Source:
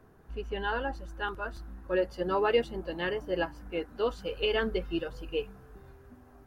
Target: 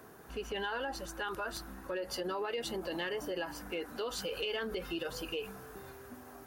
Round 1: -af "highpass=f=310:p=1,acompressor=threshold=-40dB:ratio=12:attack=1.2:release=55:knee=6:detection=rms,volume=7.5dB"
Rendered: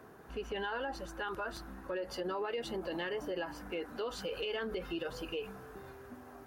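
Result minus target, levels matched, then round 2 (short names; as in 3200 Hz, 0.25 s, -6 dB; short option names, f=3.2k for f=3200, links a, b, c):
8000 Hz band -6.5 dB
-af "highpass=f=310:p=1,acompressor=threshold=-40dB:ratio=12:attack=1.2:release=55:knee=6:detection=rms,highshelf=f=4.4k:g=10.5,volume=7.5dB"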